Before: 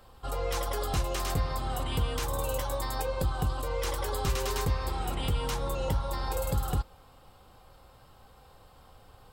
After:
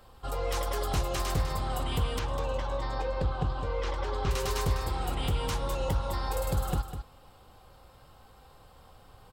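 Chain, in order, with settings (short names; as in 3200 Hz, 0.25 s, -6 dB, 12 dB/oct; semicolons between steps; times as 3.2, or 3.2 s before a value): 2.19–4.31 air absorption 150 m; echo 0.201 s -9.5 dB; Doppler distortion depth 0.17 ms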